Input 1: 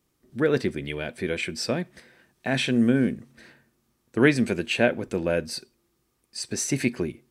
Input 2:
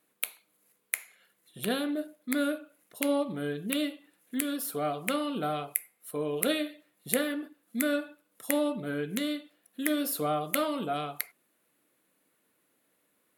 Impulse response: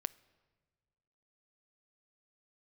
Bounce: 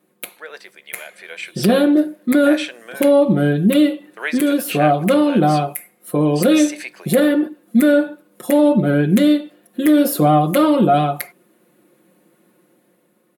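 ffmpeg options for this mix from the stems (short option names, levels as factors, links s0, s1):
-filter_complex "[0:a]agate=range=0.447:threshold=0.00355:ratio=16:detection=peak,highpass=f=630:w=0.5412,highpass=f=630:w=1.3066,volume=0.531[s0];[1:a]equalizer=f=260:w=0.33:g=14.5,aecho=1:1:5.6:0.74,alimiter=limit=0.237:level=0:latency=1:release=18,volume=1.12[s1];[s0][s1]amix=inputs=2:normalize=0,dynaudnorm=f=260:g=7:m=2"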